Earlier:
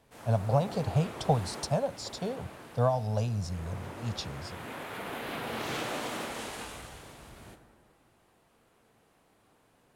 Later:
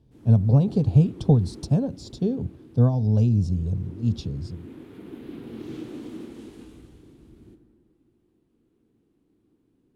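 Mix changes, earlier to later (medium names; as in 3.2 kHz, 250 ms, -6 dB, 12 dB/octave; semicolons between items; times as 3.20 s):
speech +11.0 dB; master: add FFT filter 170 Hz 0 dB, 330 Hz +8 dB, 610 Hz -18 dB, 1.9 kHz -18 dB, 3.4 kHz -14 dB, 7.6 kHz -17 dB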